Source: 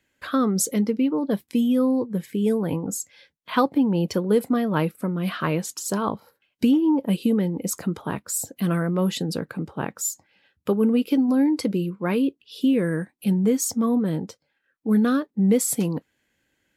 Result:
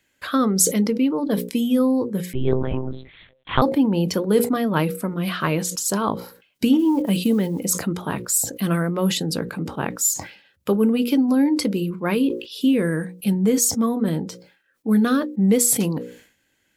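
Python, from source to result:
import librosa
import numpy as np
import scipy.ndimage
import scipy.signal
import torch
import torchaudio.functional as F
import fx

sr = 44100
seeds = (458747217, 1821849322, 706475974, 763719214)

y = fx.block_float(x, sr, bits=7, at=(6.79, 7.67))
y = fx.high_shelf(y, sr, hz=2700.0, db=5.0)
y = fx.hum_notches(y, sr, base_hz=60, count=9)
y = fx.lpc_monotone(y, sr, seeds[0], pitch_hz=130.0, order=8, at=(2.33, 3.62))
y = fx.sustainer(y, sr, db_per_s=110.0)
y = F.gain(torch.from_numpy(y), 2.0).numpy()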